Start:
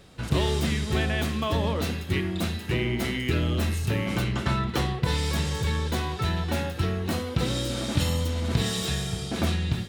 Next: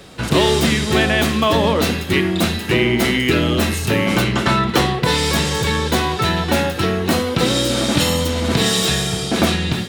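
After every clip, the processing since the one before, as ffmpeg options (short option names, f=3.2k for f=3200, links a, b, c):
-filter_complex "[0:a]acrossover=split=170[a][b];[a]alimiter=level_in=2dB:limit=-24dB:level=0:latency=1:release=488,volume=-2dB[c];[b]acontrast=67[d];[c][d]amix=inputs=2:normalize=0,volume=6dB"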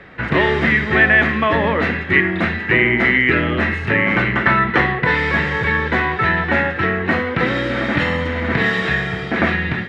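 -af "lowpass=f=1.9k:t=q:w=4.6,volume=-2.5dB"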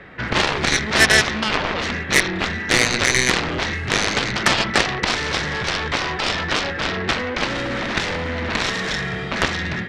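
-af "aeval=exprs='0.891*(cos(1*acos(clip(val(0)/0.891,-1,1)))-cos(1*PI/2))+0.282*(cos(7*acos(clip(val(0)/0.891,-1,1)))-cos(7*PI/2))':c=same,volume=-2dB"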